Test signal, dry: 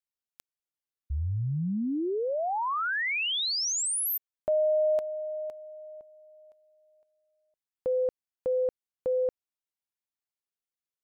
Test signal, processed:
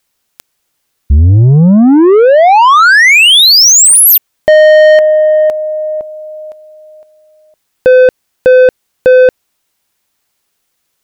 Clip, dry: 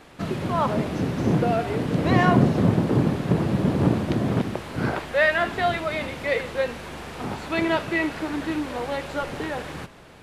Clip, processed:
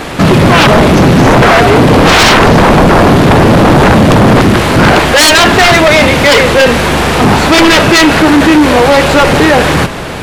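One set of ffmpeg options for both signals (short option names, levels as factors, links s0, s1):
-af "aeval=exprs='0.631*sin(PI/2*8.91*val(0)/0.631)':c=same,acontrast=52"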